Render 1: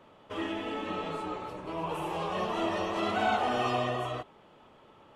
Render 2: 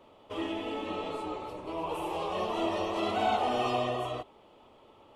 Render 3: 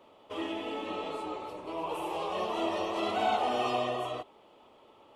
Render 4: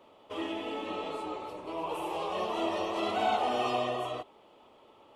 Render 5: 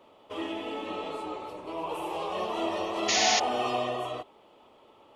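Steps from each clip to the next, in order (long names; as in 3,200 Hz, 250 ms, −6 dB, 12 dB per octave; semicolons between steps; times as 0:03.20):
graphic EQ with 15 bands 160 Hz −10 dB, 1,600 Hz −10 dB, 6,300 Hz −3 dB; level +1.5 dB
low-shelf EQ 130 Hz −11 dB
no processing that can be heard
sound drawn into the spectrogram noise, 0:03.08–0:03.40, 1,700–7,000 Hz −27 dBFS; level +1 dB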